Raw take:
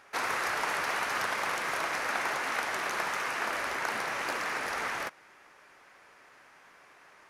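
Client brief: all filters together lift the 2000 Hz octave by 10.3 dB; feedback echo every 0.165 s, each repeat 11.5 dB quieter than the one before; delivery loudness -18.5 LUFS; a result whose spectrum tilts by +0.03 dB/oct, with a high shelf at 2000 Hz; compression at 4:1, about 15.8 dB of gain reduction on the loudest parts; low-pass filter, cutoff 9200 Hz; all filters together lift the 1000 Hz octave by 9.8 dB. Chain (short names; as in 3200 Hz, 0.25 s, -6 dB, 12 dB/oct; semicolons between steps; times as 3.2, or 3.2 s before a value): LPF 9200 Hz; bell 1000 Hz +8.5 dB; high shelf 2000 Hz +6 dB; bell 2000 Hz +6.5 dB; compressor 4:1, threshold -38 dBFS; feedback echo 0.165 s, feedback 27%, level -11.5 dB; gain +19 dB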